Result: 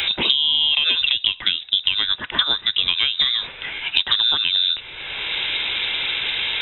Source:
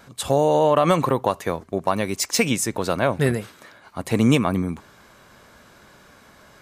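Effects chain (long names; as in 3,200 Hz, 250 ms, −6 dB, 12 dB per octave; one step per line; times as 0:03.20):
downward compressor, threshold −20 dBFS, peak gain reduction 8.5 dB
voice inversion scrambler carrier 3,800 Hz
multiband upward and downward compressor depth 100%
level +5.5 dB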